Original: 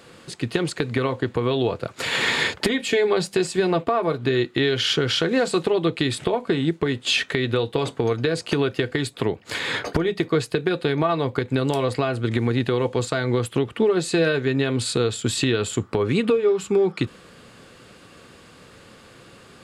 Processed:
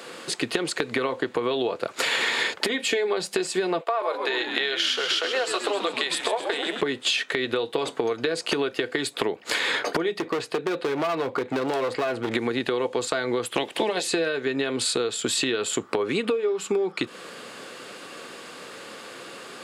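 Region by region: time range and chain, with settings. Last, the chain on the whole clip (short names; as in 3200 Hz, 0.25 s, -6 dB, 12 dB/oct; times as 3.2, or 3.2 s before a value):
3.81–6.81 HPF 500 Hz 24 dB/oct + frequency-shifting echo 0.131 s, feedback 60%, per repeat -83 Hz, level -9 dB
10.19–12.35 LPF 2900 Hz 6 dB/oct + overloaded stage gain 22 dB
13.56–14.06 spectral limiter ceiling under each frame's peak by 19 dB + bell 1300 Hz -13 dB 0.44 oct
whole clip: HPF 330 Hz 12 dB/oct; compressor, threshold -31 dBFS; gain +8.5 dB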